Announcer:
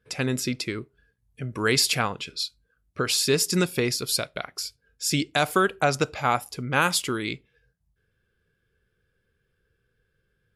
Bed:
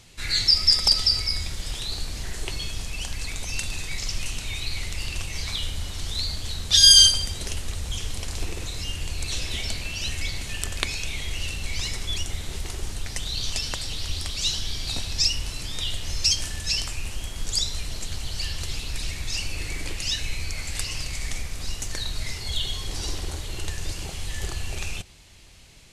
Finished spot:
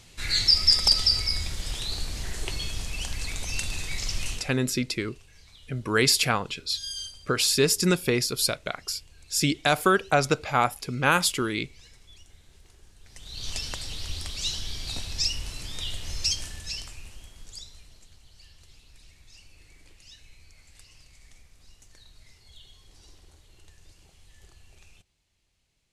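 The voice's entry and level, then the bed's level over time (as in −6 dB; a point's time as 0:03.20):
4.30 s, +0.5 dB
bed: 0:04.33 −1 dB
0:04.60 −23.5 dB
0:12.97 −23.5 dB
0:13.50 −4.5 dB
0:16.24 −4.5 dB
0:18.20 −23.5 dB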